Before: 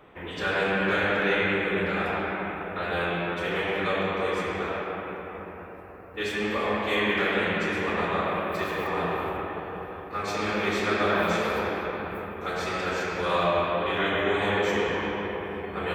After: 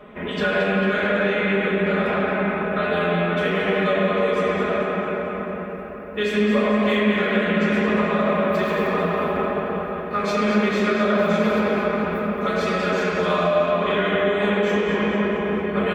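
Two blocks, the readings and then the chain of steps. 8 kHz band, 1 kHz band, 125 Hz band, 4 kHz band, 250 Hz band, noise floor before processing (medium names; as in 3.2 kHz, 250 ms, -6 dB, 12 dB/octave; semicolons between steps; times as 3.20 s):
no reading, +4.0 dB, +7.5 dB, +2.5 dB, +10.0 dB, -40 dBFS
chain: treble shelf 4.8 kHz -7 dB; band-stop 850 Hz, Q 12; comb 4.8 ms, depth 82%; compression, threshold -25 dBFS, peak gain reduction 7.5 dB; small resonant body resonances 230/560 Hz, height 8 dB, ringing for 45 ms; on a send: two-band feedback delay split 630 Hz, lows 132 ms, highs 223 ms, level -9 dB; on the sum: trim +5.5 dB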